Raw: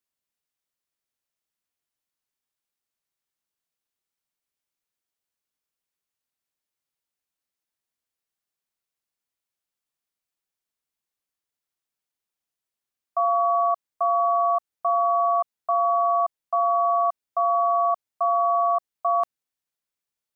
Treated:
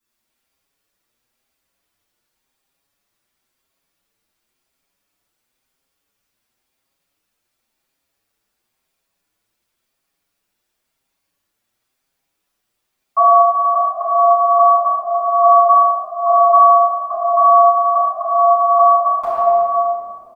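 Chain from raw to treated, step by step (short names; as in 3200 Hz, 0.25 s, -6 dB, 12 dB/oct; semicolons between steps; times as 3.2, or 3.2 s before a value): reverb RT60 2.6 s, pre-delay 3 ms, DRR -12 dB; maximiser +6 dB; endless flanger 6.4 ms +0.95 Hz; gain -1 dB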